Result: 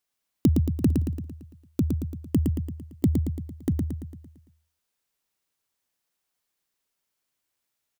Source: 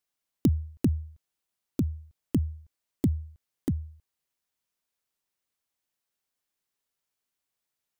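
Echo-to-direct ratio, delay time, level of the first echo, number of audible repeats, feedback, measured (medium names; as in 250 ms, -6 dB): -2.5 dB, 113 ms, -4.0 dB, 6, 52%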